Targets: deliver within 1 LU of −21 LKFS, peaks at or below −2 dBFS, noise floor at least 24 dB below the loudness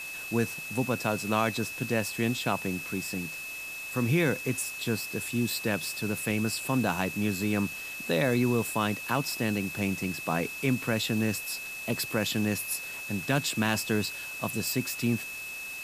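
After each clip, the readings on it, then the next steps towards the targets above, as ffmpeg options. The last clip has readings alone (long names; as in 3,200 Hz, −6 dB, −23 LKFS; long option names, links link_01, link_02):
interfering tone 2,600 Hz; level of the tone −37 dBFS; background noise floor −39 dBFS; target noise floor −54 dBFS; integrated loudness −29.5 LKFS; sample peak −12.0 dBFS; target loudness −21.0 LKFS
→ -af "bandreject=frequency=2600:width=30"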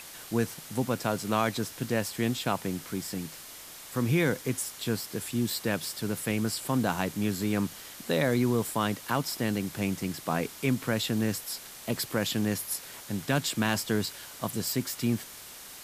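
interfering tone none found; background noise floor −46 dBFS; target noise floor −54 dBFS
→ -af "afftdn=noise_reduction=8:noise_floor=-46"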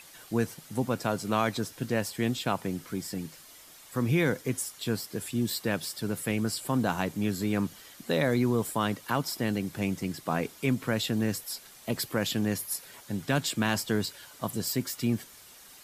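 background noise floor −52 dBFS; target noise floor −55 dBFS
→ -af "afftdn=noise_reduction=6:noise_floor=-52"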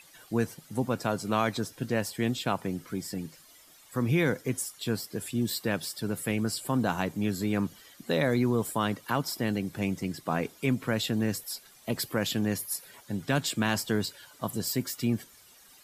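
background noise floor −56 dBFS; integrated loudness −30.5 LKFS; sample peak −12.5 dBFS; target loudness −21.0 LKFS
→ -af "volume=9.5dB"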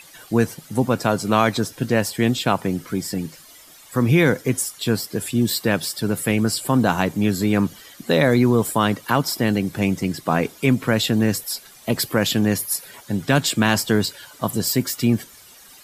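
integrated loudness −21.0 LKFS; sample peak −3.0 dBFS; background noise floor −46 dBFS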